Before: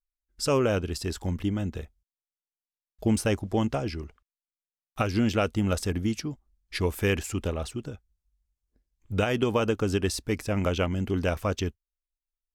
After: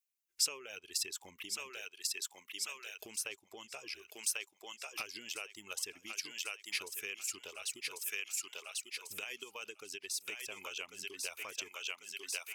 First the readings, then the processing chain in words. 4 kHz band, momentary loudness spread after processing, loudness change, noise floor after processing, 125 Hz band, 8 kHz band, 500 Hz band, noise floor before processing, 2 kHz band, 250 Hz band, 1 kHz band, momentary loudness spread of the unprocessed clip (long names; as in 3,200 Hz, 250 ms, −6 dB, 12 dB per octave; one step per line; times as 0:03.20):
−2.0 dB, 9 LU, −11.5 dB, −74 dBFS, below −40 dB, +2.5 dB, −23.5 dB, below −85 dBFS, −6.0 dB, −31.0 dB, −17.5 dB, 13 LU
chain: reverb reduction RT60 1 s
graphic EQ with 15 bands 400 Hz +11 dB, 1,000 Hz +6 dB, 2,500 Hz +12 dB, 6,300 Hz +4 dB
on a send: feedback echo with a high-pass in the loop 1,094 ms, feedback 40%, high-pass 850 Hz, level −4.5 dB
on the sum: downward compressor 6 to 1, threshold −31 dBFS, peak gain reduction 18 dB
first difference
level +5 dB